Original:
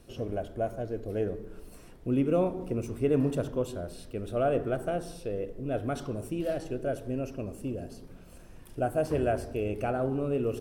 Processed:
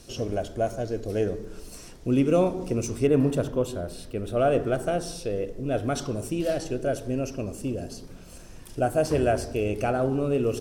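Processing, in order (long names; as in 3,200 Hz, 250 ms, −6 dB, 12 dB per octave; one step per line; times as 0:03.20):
parametric band 6,000 Hz +13.5 dB 1.4 octaves, from 0:03.07 +2.5 dB, from 0:04.39 +9.5 dB
level +4.5 dB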